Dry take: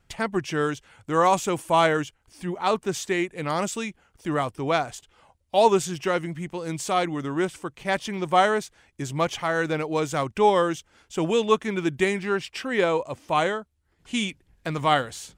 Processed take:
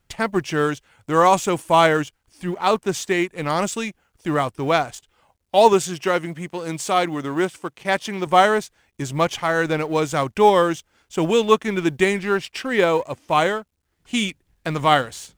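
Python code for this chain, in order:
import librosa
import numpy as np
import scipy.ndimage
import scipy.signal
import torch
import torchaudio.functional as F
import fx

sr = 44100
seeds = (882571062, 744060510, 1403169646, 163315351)

y = fx.law_mismatch(x, sr, coded='A')
y = fx.highpass(y, sr, hz=150.0, slope=6, at=(5.73, 8.27))
y = y * librosa.db_to_amplitude(5.0)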